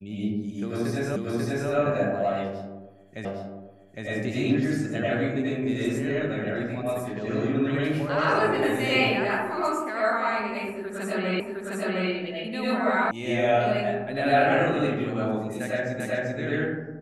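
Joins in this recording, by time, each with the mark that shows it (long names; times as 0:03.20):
0:01.16: the same again, the last 0.54 s
0:03.25: the same again, the last 0.81 s
0:11.40: the same again, the last 0.71 s
0:13.11: cut off before it has died away
0:16.00: the same again, the last 0.39 s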